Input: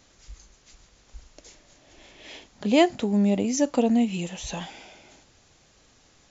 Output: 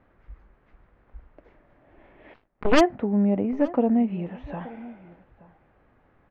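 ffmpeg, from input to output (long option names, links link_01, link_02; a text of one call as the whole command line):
ffmpeg -i in.wav -filter_complex "[0:a]lowpass=frequency=1800:width=0.5412,lowpass=frequency=1800:width=1.3066,asplit=3[link_01][link_02][link_03];[link_01]afade=type=out:start_time=2.33:duration=0.02[link_04];[link_02]aeval=exprs='0.355*(cos(1*acos(clip(val(0)/0.355,-1,1)))-cos(1*PI/2))+0.0112*(cos(3*acos(clip(val(0)/0.355,-1,1)))-cos(3*PI/2))+0.0501*(cos(7*acos(clip(val(0)/0.355,-1,1)))-cos(7*PI/2))+0.141*(cos(8*acos(clip(val(0)/0.355,-1,1)))-cos(8*PI/2))':channel_layout=same,afade=type=in:start_time=2.33:duration=0.02,afade=type=out:start_time=2.79:duration=0.02[link_05];[link_03]afade=type=in:start_time=2.79:duration=0.02[link_06];[link_04][link_05][link_06]amix=inputs=3:normalize=0,asplit=2[link_07][link_08];[link_08]adelay=874.6,volume=-19dB,highshelf=frequency=4000:gain=-19.7[link_09];[link_07][link_09]amix=inputs=2:normalize=0" out.wav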